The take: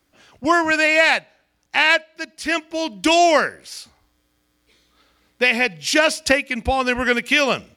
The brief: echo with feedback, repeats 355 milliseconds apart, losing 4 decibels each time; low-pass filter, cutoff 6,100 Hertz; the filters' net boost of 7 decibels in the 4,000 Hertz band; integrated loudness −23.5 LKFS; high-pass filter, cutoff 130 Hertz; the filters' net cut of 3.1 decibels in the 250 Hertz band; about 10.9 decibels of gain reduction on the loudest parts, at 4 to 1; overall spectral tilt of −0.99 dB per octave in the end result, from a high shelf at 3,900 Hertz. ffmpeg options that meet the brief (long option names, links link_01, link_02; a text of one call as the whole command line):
ffmpeg -i in.wav -af "highpass=130,lowpass=6100,equalizer=frequency=250:width_type=o:gain=-4,highshelf=frequency=3900:gain=5.5,equalizer=frequency=4000:width_type=o:gain=7,acompressor=threshold=-21dB:ratio=4,aecho=1:1:355|710|1065|1420|1775|2130|2485|2840|3195:0.631|0.398|0.25|0.158|0.0994|0.0626|0.0394|0.0249|0.0157,volume=-1dB" out.wav